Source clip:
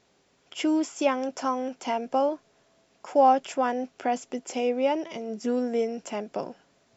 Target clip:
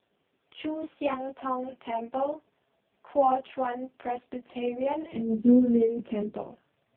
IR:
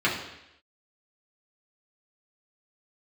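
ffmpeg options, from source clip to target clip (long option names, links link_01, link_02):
-filter_complex "[0:a]asubboost=boost=3.5:cutoff=120,flanger=delay=19.5:depth=7.7:speed=0.67,asplit=3[link_01][link_02][link_03];[link_01]afade=type=out:start_time=5.11:duration=0.02[link_04];[link_02]lowshelf=frequency=500:width_type=q:width=1.5:gain=11,afade=type=in:start_time=5.11:duration=0.02,afade=type=out:start_time=6.36:duration=0.02[link_05];[link_03]afade=type=in:start_time=6.36:duration=0.02[link_06];[link_04][link_05][link_06]amix=inputs=3:normalize=0,asplit=2[link_07][link_08];[1:a]atrim=start_sample=2205,afade=type=out:start_time=0.16:duration=0.01,atrim=end_sample=7497[link_09];[link_08][link_09]afir=irnorm=-1:irlink=0,volume=-35dB[link_10];[link_07][link_10]amix=inputs=2:normalize=0" -ar 8000 -c:a libopencore_amrnb -b:a 4750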